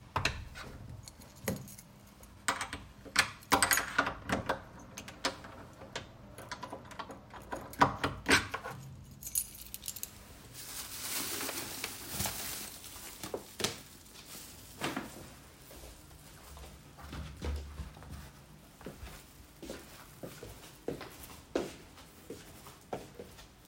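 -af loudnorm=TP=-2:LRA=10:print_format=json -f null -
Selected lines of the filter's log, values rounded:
"input_i" : "-36.8",
"input_tp" : "-8.2",
"input_lra" : "13.8",
"input_thresh" : "-48.4",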